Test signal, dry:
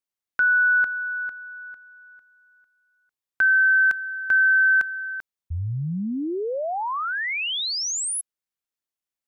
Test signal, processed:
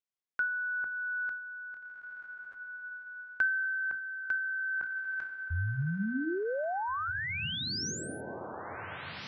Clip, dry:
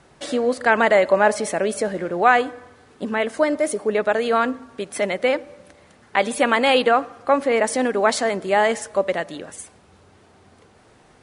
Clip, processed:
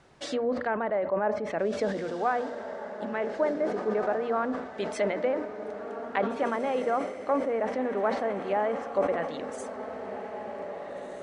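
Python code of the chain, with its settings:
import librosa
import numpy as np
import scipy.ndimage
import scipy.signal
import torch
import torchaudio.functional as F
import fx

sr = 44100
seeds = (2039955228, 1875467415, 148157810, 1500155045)

y = fx.hum_notches(x, sr, base_hz=60, count=5)
y = fx.env_lowpass_down(y, sr, base_hz=1200.0, full_db=-17.0)
y = scipy.signal.sosfilt(scipy.signal.butter(2, 7500.0, 'lowpass', fs=sr, output='sos'), y)
y = fx.dynamic_eq(y, sr, hz=5700.0, q=1.3, threshold_db=-46.0, ratio=3.0, max_db=4)
y = fx.rider(y, sr, range_db=4, speed_s=0.5)
y = fx.echo_diffused(y, sr, ms=1864, feedback_pct=41, wet_db=-8.5)
y = fx.sustainer(y, sr, db_per_s=72.0)
y = y * 10.0 ** (-8.5 / 20.0)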